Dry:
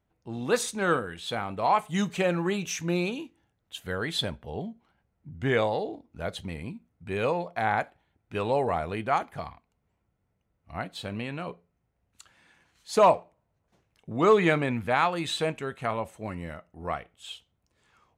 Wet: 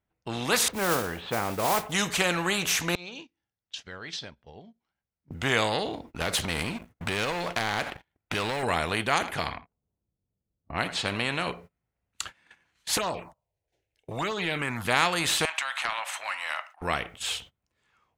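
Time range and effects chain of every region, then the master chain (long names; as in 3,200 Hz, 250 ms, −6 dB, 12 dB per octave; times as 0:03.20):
0:00.68–0:01.92: low-pass filter 1,000 Hz + parametric band 550 Hz +4 dB 1 octave + noise that follows the level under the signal 27 dB
0:02.95–0:05.31: downward compressor 16 to 1, threshold −40 dBFS + transistor ladder low-pass 6,000 Hz, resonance 65%
0:06.21–0:08.63: downward compressor, threshold −36 dBFS + leveller curve on the samples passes 2
0:09.15–0:11.48: low-pass that shuts in the quiet parts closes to 430 Hz, open at −31.5 dBFS + single-tap delay 81 ms −21 dB
0:12.97–0:14.85: phaser swept by the level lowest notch 190 Hz, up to 2,300 Hz, full sweep at −14.5 dBFS + downward compressor 5 to 1, threshold −30 dBFS
0:15.45–0:16.82: downward compressor 3 to 1, threshold −37 dBFS + inverse Chebyshev high-pass filter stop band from 440 Hz + mid-hump overdrive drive 14 dB, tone 2,600 Hz, clips at −19.5 dBFS
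whole clip: parametric band 2,100 Hz +5 dB 1.9 octaves; noise gate −53 dBFS, range −25 dB; every bin compressed towards the loudest bin 2 to 1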